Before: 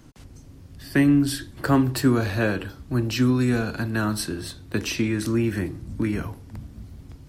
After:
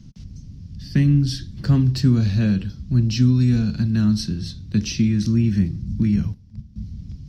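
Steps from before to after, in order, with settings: 6.16–6.76 gate -33 dBFS, range -12 dB; EQ curve 130 Hz 0 dB, 200 Hz +5 dB, 290 Hz -14 dB, 870 Hz -22 dB, 1400 Hz -20 dB, 5600 Hz -3 dB, 8200 Hz -21 dB, 12000 Hz -24 dB; gain +8 dB

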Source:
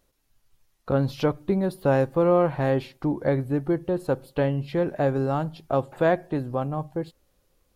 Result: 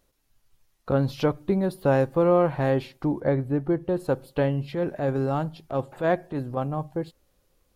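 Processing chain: 3.2–3.89 high shelf 3300 Hz -9 dB; 4.71–6.57 transient shaper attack -8 dB, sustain -1 dB

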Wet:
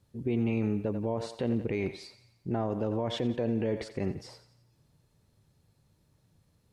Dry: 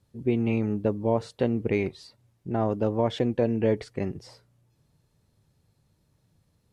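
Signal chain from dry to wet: on a send: thinning echo 88 ms, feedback 52%, high-pass 450 Hz, level -14 dB; on the sum: limiter -21 dBFS, peak gain reduction 10 dB

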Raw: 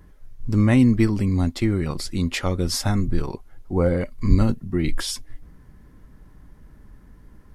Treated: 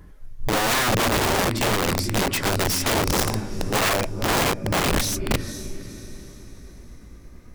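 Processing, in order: gliding pitch shift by +3 st starting unshifted; diffused feedback echo 0.468 s, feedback 45%, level -10 dB; wrapped overs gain 19.5 dB; gain +3.5 dB

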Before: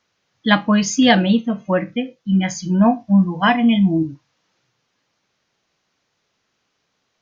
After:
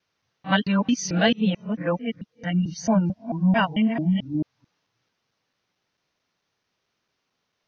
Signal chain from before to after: local time reversal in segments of 0.208 s; varispeed -6%; gain -6.5 dB

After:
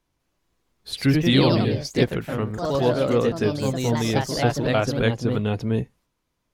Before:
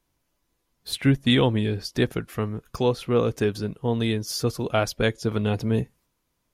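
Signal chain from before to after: high shelf 10000 Hz -11.5 dB; echoes that change speed 0.199 s, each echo +2 st, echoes 3

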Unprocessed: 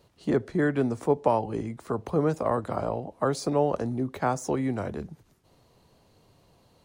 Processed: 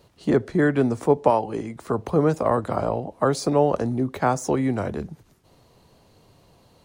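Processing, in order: 1.3–1.76 low shelf 170 Hz -10.5 dB; gain +5 dB

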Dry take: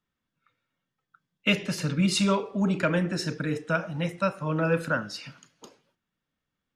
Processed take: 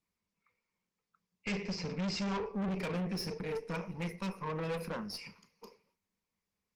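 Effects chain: ripple EQ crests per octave 0.85, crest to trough 17 dB; tube stage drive 27 dB, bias 0.55; gain -5 dB; Opus 24 kbps 48000 Hz

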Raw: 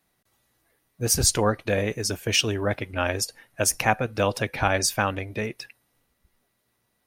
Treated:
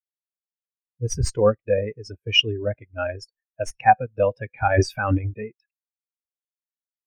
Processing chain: tracing distortion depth 0.032 ms; dynamic EQ 2100 Hz, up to +4 dB, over -36 dBFS, Q 0.71; 4.7–5.34 transient shaper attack -2 dB, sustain +11 dB; in parallel at -7.5 dB: soft clip -15 dBFS, distortion -11 dB; on the sum: spectral expander 2.5:1; gain -2 dB

